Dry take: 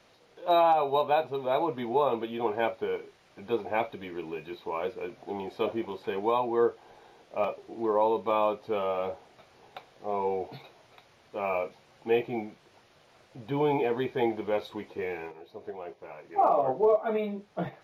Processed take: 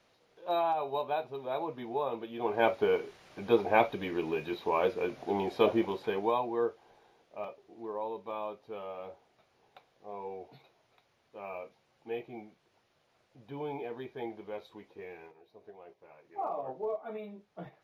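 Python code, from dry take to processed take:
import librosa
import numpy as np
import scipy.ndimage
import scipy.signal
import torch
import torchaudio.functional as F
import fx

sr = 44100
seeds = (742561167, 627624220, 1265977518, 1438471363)

y = fx.gain(x, sr, db=fx.line((2.3, -7.5), (2.72, 4.0), (5.8, 4.0), (6.48, -5.0), (7.55, -12.0)))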